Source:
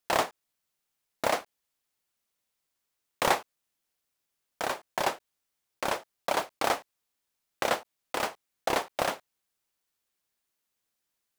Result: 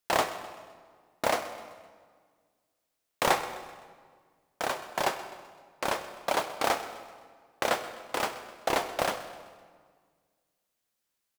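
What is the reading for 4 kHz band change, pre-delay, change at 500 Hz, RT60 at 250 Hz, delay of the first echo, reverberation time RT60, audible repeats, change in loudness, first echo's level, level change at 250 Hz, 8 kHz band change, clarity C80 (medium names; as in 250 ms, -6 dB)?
+0.5 dB, 11 ms, +0.5 dB, 2.0 s, 128 ms, 1.7 s, 4, 0.0 dB, -16.5 dB, +0.5 dB, +0.5 dB, 11.0 dB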